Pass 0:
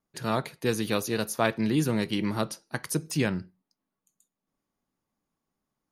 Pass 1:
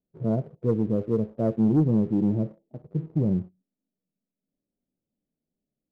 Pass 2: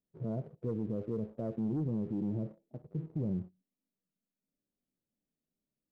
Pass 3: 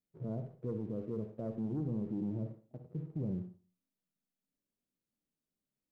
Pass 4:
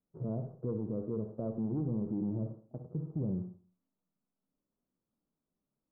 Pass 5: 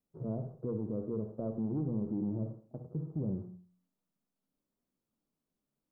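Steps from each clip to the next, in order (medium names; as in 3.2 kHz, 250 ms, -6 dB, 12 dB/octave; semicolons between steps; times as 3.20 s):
steep low-pass 630 Hz 36 dB/octave; harmonic-percussive split percussive -14 dB; waveshaping leveller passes 1; trim +4 dB
peak limiter -22.5 dBFS, peak gain reduction 9.5 dB; trim -5.5 dB
reverberation RT60 0.40 s, pre-delay 49 ms, DRR 9.5 dB; trim -3 dB
steep low-pass 1.3 kHz 36 dB/octave; in parallel at 0 dB: compression, threshold -44 dBFS, peak gain reduction 11 dB
hum notches 60/120/180 Hz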